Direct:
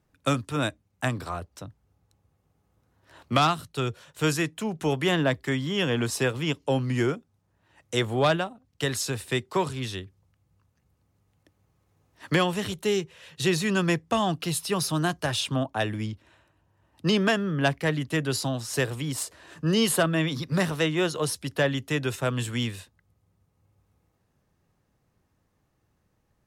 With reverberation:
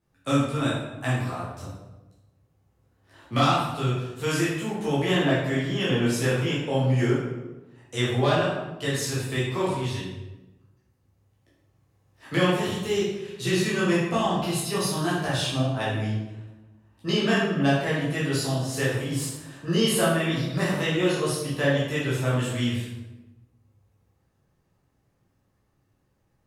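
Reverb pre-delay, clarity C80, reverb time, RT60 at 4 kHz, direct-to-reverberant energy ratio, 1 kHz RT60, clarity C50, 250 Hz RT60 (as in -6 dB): 9 ms, 3.5 dB, 1.1 s, 0.70 s, -8.5 dB, 1.0 s, 0.0 dB, 1.4 s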